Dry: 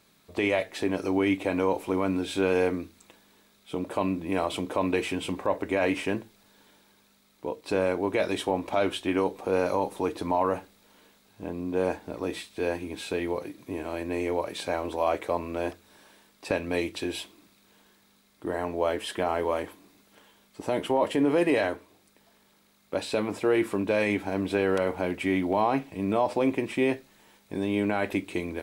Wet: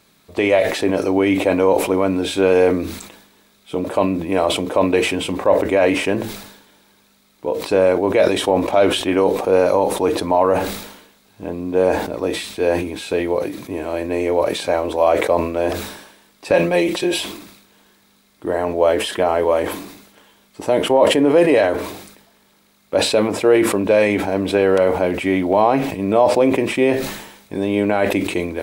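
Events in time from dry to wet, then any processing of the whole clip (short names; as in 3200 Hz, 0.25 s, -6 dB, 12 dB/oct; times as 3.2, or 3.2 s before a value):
16.53–17.18 comb 5.6 ms, depth 91%
whole clip: dynamic EQ 550 Hz, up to +6 dB, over -39 dBFS, Q 1.7; sustainer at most 65 dB/s; gain +6.5 dB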